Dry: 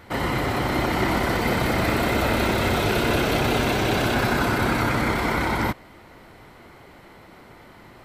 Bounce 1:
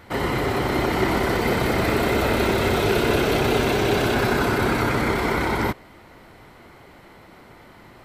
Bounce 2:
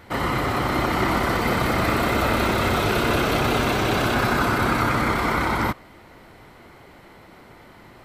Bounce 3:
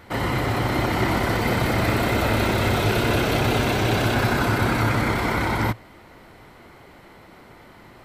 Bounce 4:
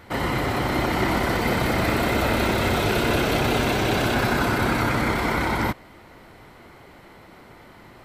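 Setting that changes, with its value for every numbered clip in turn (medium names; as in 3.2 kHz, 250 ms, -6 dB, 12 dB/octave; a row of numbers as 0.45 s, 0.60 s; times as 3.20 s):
dynamic bell, frequency: 410 Hz, 1.2 kHz, 110 Hz, 7.7 kHz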